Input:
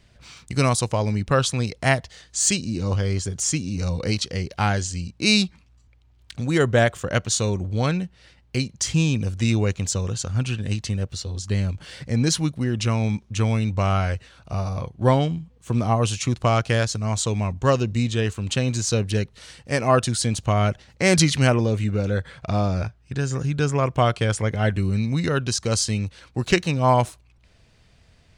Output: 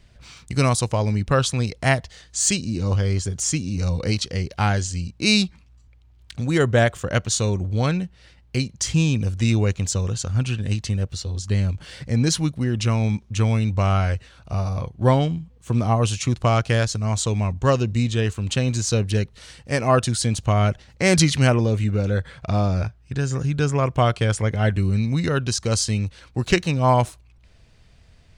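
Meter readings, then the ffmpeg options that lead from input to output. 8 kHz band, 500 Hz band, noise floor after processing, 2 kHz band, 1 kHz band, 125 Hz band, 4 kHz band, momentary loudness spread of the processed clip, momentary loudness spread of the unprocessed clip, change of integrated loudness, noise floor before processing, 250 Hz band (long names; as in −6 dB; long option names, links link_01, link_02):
0.0 dB, 0.0 dB, −53 dBFS, 0.0 dB, 0.0 dB, +2.0 dB, 0.0 dB, 8 LU, 9 LU, +1.0 dB, −56 dBFS, +0.5 dB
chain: -af "lowshelf=frequency=66:gain=8"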